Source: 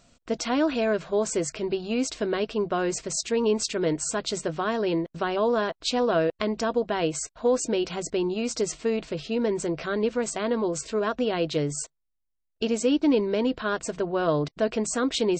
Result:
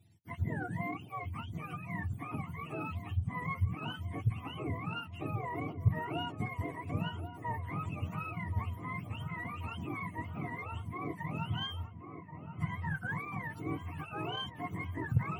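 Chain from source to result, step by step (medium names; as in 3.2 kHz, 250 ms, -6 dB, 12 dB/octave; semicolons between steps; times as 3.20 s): spectrum inverted on a logarithmic axis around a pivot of 680 Hz; high-order bell 910 Hz -8.5 dB 2.5 oct; Chebyshev shaper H 6 -27 dB, 8 -39 dB, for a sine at -9 dBFS; feedback echo behind a low-pass 1080 ms, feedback 68%, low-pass 1.4 kHz, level -9.5 dB; trim -6.5 dB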